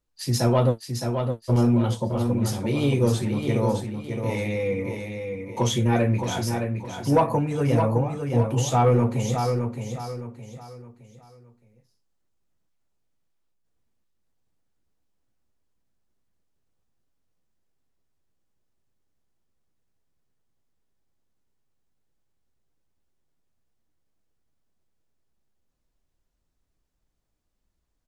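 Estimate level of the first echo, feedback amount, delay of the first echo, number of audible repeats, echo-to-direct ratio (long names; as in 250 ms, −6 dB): −6.0 dB, 35%, 615 ms, 4, −5.5 dB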